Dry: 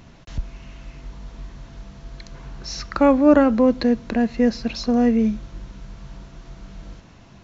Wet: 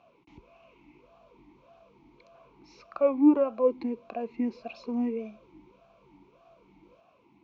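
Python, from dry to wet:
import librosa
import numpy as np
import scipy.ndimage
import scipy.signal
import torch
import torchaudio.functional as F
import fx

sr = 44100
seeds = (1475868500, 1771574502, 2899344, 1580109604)

y = fx.rider(x, sr, range_db=10, speed_s=2.0)
y = fx.vowel_sweep(y, sr, vowels='a-u', hz=1.7)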